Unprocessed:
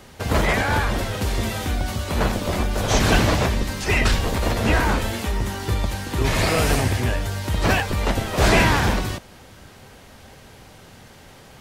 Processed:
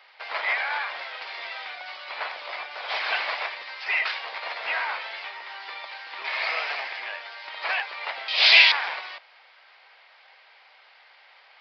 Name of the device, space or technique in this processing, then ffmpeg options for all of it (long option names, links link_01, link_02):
musical greeting card: -filter_complex "[0:a]asettb=1/sr,asplit=3[link_01][link_02][link_03];[link_01]atrim=end=8.284[link_04];[link_02]atrim=start=8.28:end=8.72,asetpts=PTS-STARTPTS,afade=type=in:duration=0.004:curve=qsin,afade=type=out:start_time=0.436:duration=0.004:curve=qsin,highshelf=frequency=2200:width_type=q:width=1.5:gain=14[link_05];[link_03]atrim=start=8.716[link_06];[link_04][link_05]acrossfade=duration=0.004:curve1=hsin:curve2=qsin[link_07];[link_07][link_06]acrossfade=duration=0.004:curve1=qsin:curve2=hsin,aresample=11025,aresample=44100,highpass=frequency=720:width=0.5412,highpass=frequency=720:width=1.3066,equalizer=frequency=2200:width_type=o:width=0.45:gain=7.5,volume=-6dB"